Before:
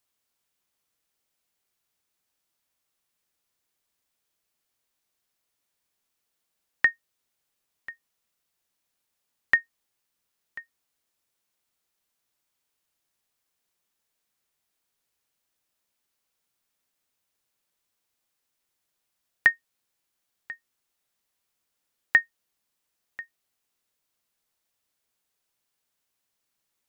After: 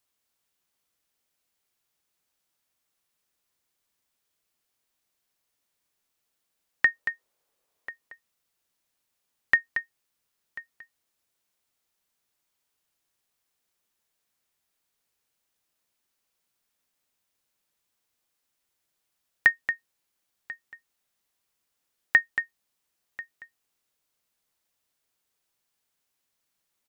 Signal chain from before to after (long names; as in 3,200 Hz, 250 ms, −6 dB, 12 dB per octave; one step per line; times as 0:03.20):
0:06.88–0:07.89: graphic EQ with 10 bands 125 Hz −3 dB, 500 Hz +10 dB, 1,000 Hz +4 dB
single-tap delay 229 ms −9 dB